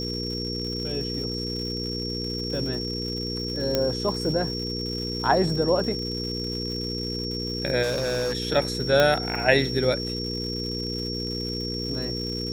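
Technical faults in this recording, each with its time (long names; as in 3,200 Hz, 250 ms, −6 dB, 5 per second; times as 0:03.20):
surface crackle 240 per second −34 dBFS
mains hum 60 Hz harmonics 8 −32 dBFS
whistle 5,500 Hz −31 dBFS
0:03.75: click −8 dBFS
0:07.82–0:08.35: clipping −22.5 dBFS
0:09.00: click −6 dBFS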